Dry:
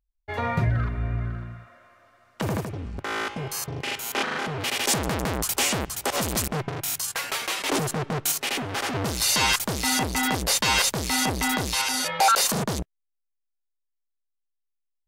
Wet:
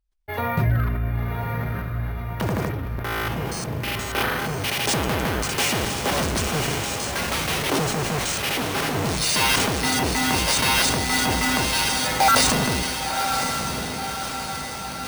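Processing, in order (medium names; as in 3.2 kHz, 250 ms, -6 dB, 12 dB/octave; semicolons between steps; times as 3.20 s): echo that smears into a reverb 1046 ms, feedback 58%, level -4.5 dB; careless resampling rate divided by 3×, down filtered, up hold; decay stretcher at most 24 dB/s; trim +1.5 dB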